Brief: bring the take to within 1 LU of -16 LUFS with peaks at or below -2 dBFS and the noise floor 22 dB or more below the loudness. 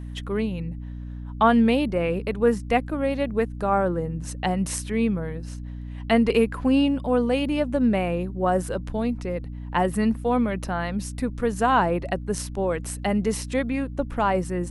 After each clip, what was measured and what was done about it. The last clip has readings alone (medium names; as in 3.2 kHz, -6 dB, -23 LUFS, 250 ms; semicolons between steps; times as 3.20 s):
hum 60 Hz; highest harmonic 300 Hz; hum level -32 dBFS; loudness -24.5 LUFS; peak level -6.5 dBFS; loudness target -16.0 LUFS
-> de-hum 60 Hz, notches 5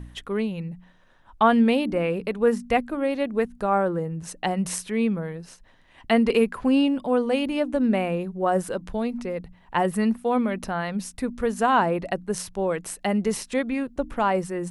hum not found; loudness -24.5 LUFS; peak level -7.5 dBFS; loudness target -16.0 LUFS
-> trim +8.5 dB; peak limiter -2 dBFS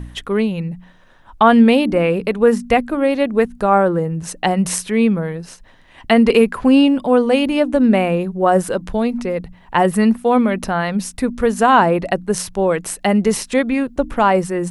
loudness -16.5 LUFS; peak level -2.0 dBFS; noise floor -47 dBFS